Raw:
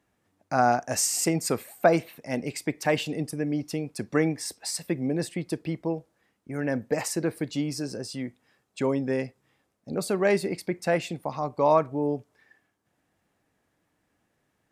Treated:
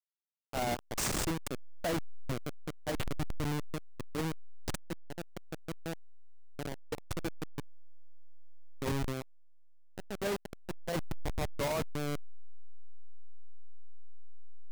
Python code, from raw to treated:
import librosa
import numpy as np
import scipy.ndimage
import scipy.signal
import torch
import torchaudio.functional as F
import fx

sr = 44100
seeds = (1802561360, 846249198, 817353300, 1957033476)

y = fx.delta_hold(x, sr, step_db=-19.0)
y = np.clip(y, -10.0 ** (-24.0 / 20.0), 10.0 ** (-24.0 / 20.0))
y = F.gain(torch.from_numpy(y), -6.0).numpy()